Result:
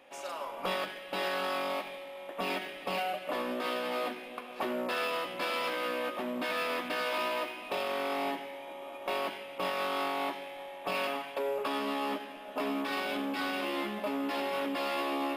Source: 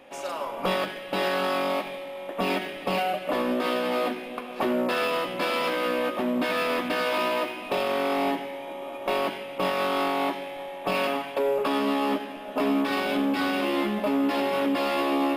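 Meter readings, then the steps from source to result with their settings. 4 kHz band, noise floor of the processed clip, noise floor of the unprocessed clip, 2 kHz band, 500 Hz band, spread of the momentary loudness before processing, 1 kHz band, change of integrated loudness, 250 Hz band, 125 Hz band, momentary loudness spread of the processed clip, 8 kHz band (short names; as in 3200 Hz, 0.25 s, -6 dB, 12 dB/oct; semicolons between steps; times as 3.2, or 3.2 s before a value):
-5.0 dB, -45 dBFS, -38 dBFS, -5.5 dB, -8.0 dB, 8 LU, -6.5 dB, -7.0 dB, -10.5 dB, under -10 dB, 7 LU, -5.0 dB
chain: low shelf 410 Hz -8 dB; gain -5 dB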